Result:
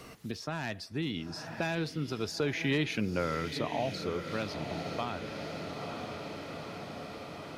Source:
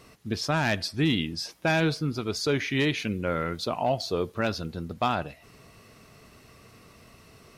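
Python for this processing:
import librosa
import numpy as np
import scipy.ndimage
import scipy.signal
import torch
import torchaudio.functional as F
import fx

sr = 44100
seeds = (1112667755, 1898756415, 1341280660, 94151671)

y = fx.doppler_pass(x, sr, speed_mps=10, closest_m=4.7, pass_at_s=2.99)
y = fx.echo_diffused(y, sr, ms=928, feedback_pct=50, wet_db=-12)
y = fx.band_squash(y, sr, depth_pct=70)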